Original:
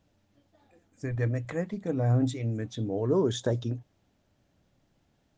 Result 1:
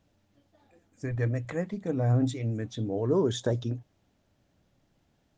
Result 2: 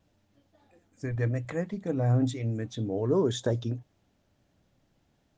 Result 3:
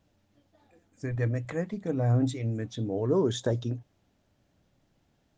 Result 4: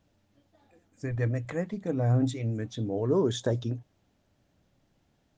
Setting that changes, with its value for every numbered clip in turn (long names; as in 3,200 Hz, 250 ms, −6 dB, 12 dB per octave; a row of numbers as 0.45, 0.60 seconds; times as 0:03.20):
pitch vibrato, speed: 12, 1.6, 3.6, 7.6 Hertz